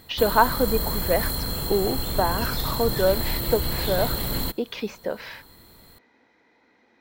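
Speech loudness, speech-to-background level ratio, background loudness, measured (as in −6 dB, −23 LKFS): −26.0 LKFS, 1.0 dB, −27.0 LKFS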